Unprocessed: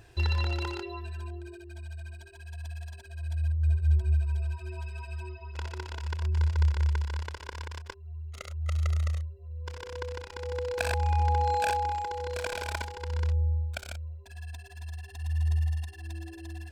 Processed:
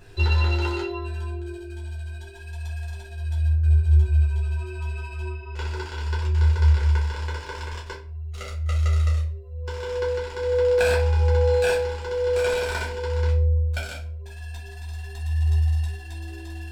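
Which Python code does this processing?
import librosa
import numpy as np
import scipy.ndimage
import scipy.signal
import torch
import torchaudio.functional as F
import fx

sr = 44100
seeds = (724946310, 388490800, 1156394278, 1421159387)

y = fx.room_shoebox(x, sr, seeds[0], volume_m3=34.0, walls='mixed', distance_m=1.0)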